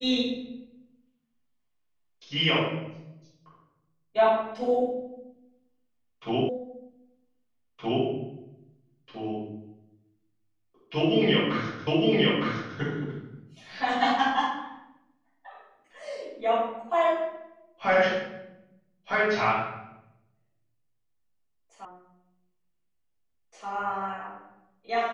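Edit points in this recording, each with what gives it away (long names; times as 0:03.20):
0:06.49: the same again, the last 1.57 s
0:11.87: the same again, the last 0.91 s
0:21.85: cut off before it has died away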